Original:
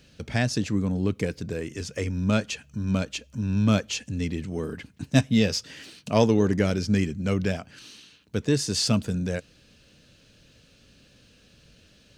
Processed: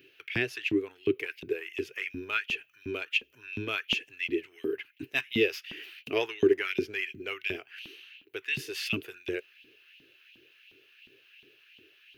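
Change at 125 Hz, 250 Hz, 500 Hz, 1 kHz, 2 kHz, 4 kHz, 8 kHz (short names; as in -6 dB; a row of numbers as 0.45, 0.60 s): -20.0, -10.5, -3.0, -8.0, +3.5, -3.0, -16.5 dB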